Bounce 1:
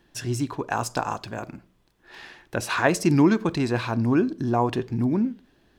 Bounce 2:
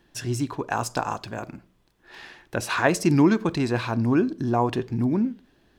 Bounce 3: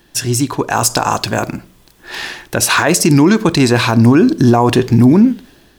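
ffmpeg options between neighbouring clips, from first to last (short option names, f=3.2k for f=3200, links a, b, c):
-af anull
-af "highshelf=f=4.8k:g=11,dynaudnorm=f=450:g=3:m=10.5dB,alimiter=level_in=10.5dB:limit=-1dB:release=50:level=0:latency=1,volume=-1dB"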